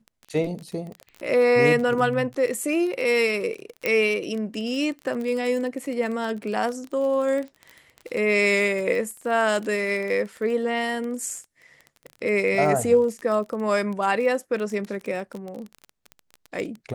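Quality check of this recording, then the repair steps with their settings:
surface crackle 20 per second −29 dBFS
0:03.86: click −10 dBFS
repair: click removal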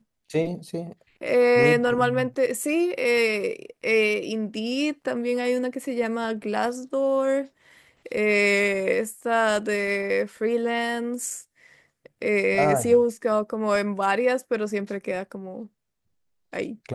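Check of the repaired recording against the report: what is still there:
none of them is left

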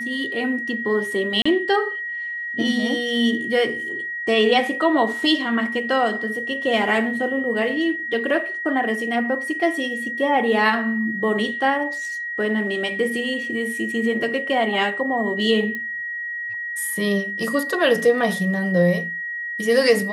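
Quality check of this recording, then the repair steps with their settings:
whistle 1,900 Hz −26 dBFS
0:01.42–0:01.46: drop-out 35 ms
0:15.75: click −17 dBFS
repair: click removal
notch filter 1,900 Hz, Q 30
repair the gap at 0:01.42, 35 ms

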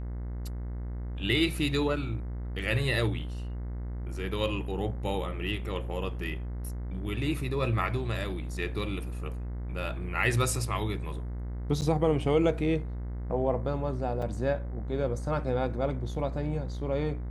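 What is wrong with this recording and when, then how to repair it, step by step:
mains buzz 60 Hz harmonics 36 −35 dBFS
0:11.81–0:11.82: drop-out 9.1 ms
0:14.22: drop-out 4 ms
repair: hum removal 60 Hz, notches 36
repair the gap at 0:11.81, 9.1 ms
repair the gap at 0:14.22, 4 ms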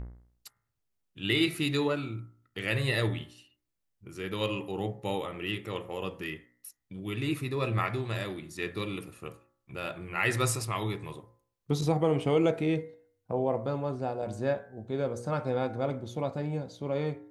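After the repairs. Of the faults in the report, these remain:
none of them is left

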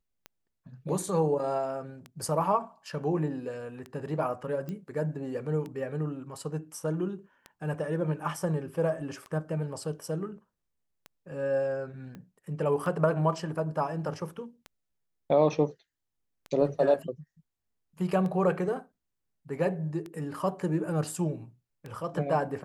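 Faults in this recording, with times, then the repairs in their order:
scratch tick 33 1/3 rpm −26 dBFS
0:04.69: click −25 dBFS
0:12.15: click −31 dBFS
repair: click removal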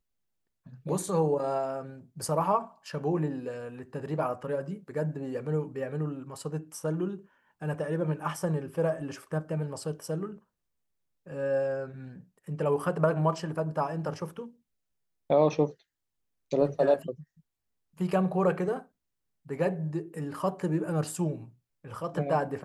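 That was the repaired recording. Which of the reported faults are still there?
0:12.15: click

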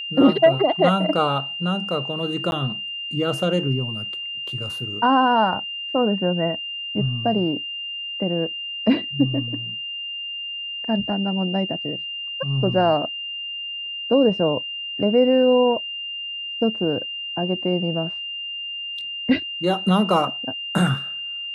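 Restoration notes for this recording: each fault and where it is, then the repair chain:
whistle 2,800 Hz −28 dBFS
0:02.51–0:02.52: drop-out 11 ms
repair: notch filter 2,800 Hz, Q 30
repair the gap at 0:02.51, 11 ms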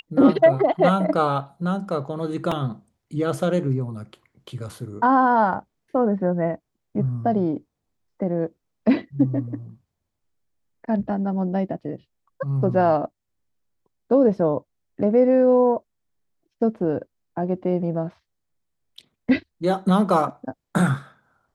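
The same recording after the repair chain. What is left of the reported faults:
none of them is left

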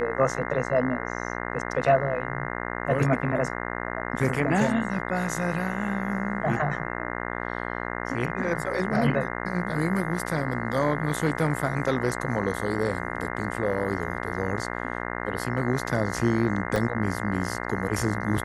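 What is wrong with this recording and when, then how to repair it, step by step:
mains buzz 60 Hz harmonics 35 −32 dBFS
0:16.76: drop-out 2.2 ms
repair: hum removal 60 Hz, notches 35
repair the gap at 0:16.76, 2.2 ms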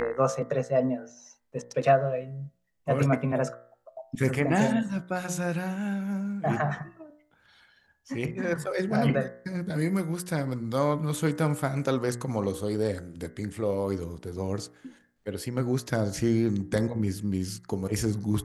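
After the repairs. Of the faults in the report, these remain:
none of them is left

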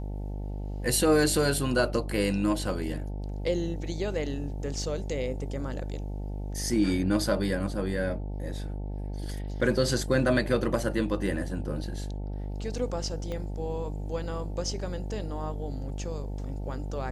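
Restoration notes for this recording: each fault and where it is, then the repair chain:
mains buzz 50 Hz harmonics 18 −34 dBFS
0:13.32: click −23 dBFS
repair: click removal
hum removal 50 Hz, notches 18

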